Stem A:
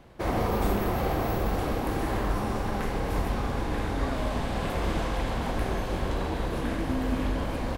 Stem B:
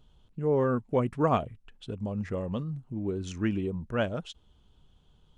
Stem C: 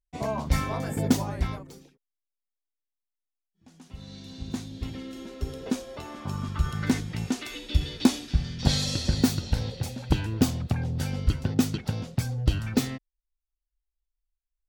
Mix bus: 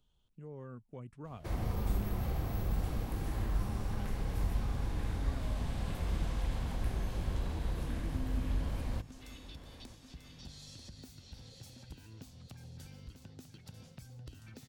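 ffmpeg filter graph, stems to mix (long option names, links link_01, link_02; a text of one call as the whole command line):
ffmpeg -i stem1.wav -i stem2.wav -i stem3.wav -filter_complex "[0:a]adelay=1250,volume=-3dB,asplit=2[link_01][link_02];[link_02]volume=-20dB[link_03];[1:a]volume=-14.5dB[link_04];[2:a]acompressor=threshold=-31dB:ratio=6,adelay=1800,volume=-15.5dB,asplit=2[link_05][link_06];[link_06]volume=-10dB[link_07];[link_03][link_07]amix=inputs=2:normalize=0,aecho=0:1:941|1882|2823|3764|4705:1|0.35|0.122|0.0429|0.015[link_08];[link_01][link_04][link_05][link_08]amix=inputs=4:normalize=0,highshelf=frequency=2900:gain=9,acrossover=split=170[link_09][link_10];[link_10]acompressor=threshold=-55dB:ratio=2[link_11];[link_09][link_11]amix=inputs=2:normalize=0" out.wav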